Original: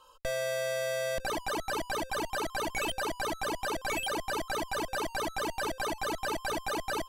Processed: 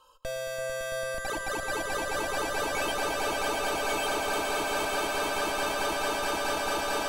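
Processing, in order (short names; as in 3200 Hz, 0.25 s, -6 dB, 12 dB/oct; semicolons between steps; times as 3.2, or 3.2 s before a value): notch 2000 Hz, Q 12; swelling echo 0.112 s, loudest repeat 8, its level -6.5 dB; gain -1.5 dB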